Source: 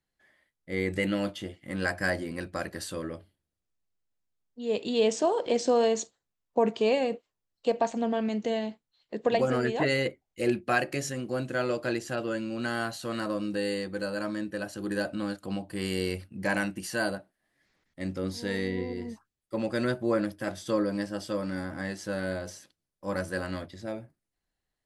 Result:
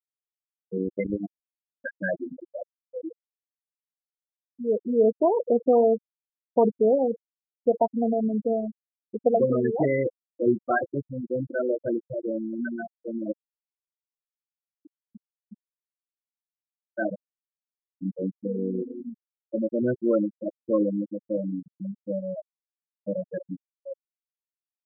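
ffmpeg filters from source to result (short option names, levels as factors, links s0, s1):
-filter_complex "[0:a]asettb=1/sr,asplit=3[s0][s1][s2];[s0]atrim=end=0.784[s3];[s1]atrim=start=0.78:end=1.95,asetpts=PTS-STARTPTS,afade=t=in:d=0.004:c=qsin,afade=t=out:st=1.166:d=0.004:c=qsin,acrusher=bits=3:mix=0:aa=0.5[s4];[s2]atrim=start=1.946[s5];[s3][s4]acrossfade=d=0.004:c1=hsin:c2=qsin[s6];[s6][s5]acrossfade=d=0.004:c1=qsin:c2=hsin,asplit=3[s7][s8][s9];[s7]afade=t=out:st=13.31:d=0.02[s10];[s8]acompressor=threshold=0.0141:ratio=5:attack=3.2:release=140:knee=1:detection=peak,afade=t=in:st=13.31:d=0.02,afade=t=out:st=16.97:d=0.02[s11];[s9]afade=t=in:st=16.97:d=0.02[s12];[s10][s11][s12]amix=inputs=3:normalize=0,lowpass=f=1200:p=1,lowshelf=f=68:g=-6,afftfilt=real='re*gte(hypot(re,im),0.126)':imag='im*gte(hypot(re,im),0.126)':win_size=1024:overlap=0.75,volume=1.88"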